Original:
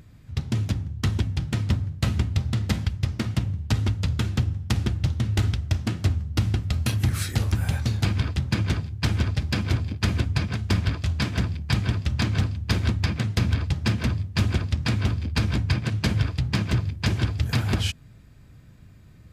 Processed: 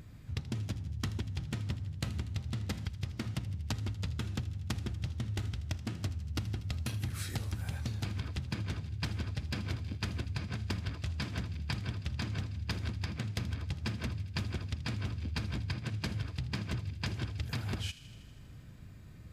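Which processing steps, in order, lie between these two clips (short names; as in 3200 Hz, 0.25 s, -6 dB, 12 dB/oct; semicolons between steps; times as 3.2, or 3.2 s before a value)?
compressor, threshold -32 dBFS, peak gain reduction 14.5 dB; on a send: thin delay 80 ms, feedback 74%, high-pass 2200 Hz, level -14.5 dB; on the sum: gain -1.5 dB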